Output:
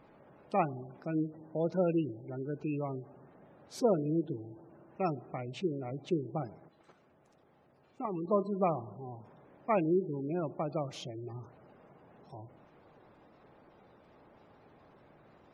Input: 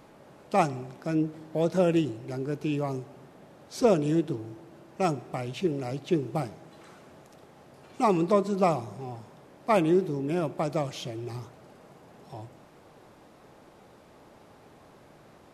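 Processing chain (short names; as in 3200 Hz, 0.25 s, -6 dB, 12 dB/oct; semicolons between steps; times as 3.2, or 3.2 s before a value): 6.6–8.28 level quantiser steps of 10 dB; spectral gate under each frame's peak -25 dB strong; gain -6 dB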